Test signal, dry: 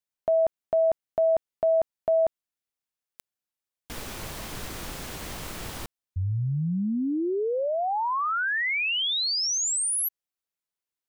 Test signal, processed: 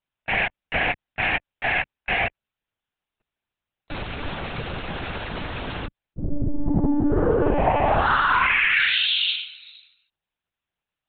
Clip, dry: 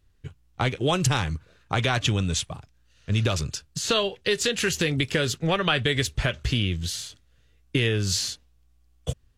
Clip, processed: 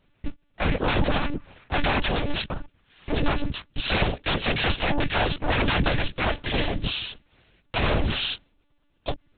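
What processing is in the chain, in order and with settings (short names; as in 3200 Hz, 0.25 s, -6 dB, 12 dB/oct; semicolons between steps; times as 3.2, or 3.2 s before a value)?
sine folder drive 15 dB, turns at -9.5 dBFS; noise vocoder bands 8; monotone LPC vocoder at 8 kHz 290 Hz; gain -8 dB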